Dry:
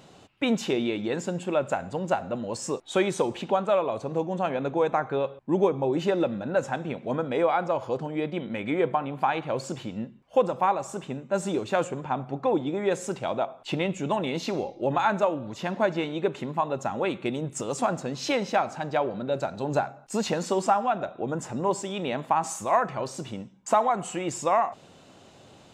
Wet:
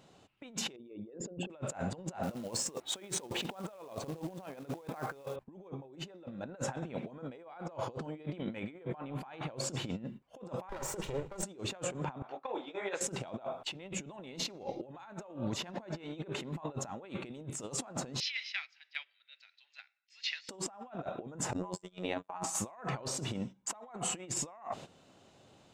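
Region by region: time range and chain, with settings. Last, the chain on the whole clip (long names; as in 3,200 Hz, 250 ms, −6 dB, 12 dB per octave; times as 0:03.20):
0:00.76–0:01.50: spectral envelope exaggerated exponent 2 + low-pass filter 4,900 Hz
0:02.23–0:05.36: high-pass filter 97 Hz 6 dB per octave + floating-point word with a short mantissa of 2 bits
0:10.69–0:11.43: lower of the sound and its delayed copy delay 2.1 ms + mains-hum notches 50/100/150/200 Hz + saturating transformer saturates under 150 Hz
0:12.22–0:13.01: Bessel high-pass filter 880 Hz + high-frequency loss of the air 130 metres + micro pitch shift up and down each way 54 cents
0:18.20–0:20.49: Chebyshev band-pass filter 2,000–5,200 Hz, order 3 + high-shelf EQ 2,600 Hz −4.5 dB
0:21.53–0:22.44: noise gate −30 dBFS, range −39 dB + phases set to zero 91 Hz
whole clip: noise gate −45 dBFS, range −13 dB; brickwall limiter −20.5 dBFS; compressor whose output falls as the input rises −37 dBFS, ratio −0.5; level −2.5 dB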